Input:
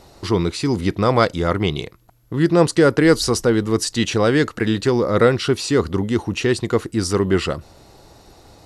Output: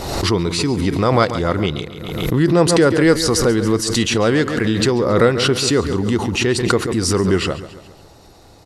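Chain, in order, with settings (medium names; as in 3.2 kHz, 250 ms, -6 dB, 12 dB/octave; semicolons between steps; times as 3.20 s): on a send: feedback delay 138 ms, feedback 50%, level -13.5 dB; on the sum: swell ahead of each attack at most 42 dB/s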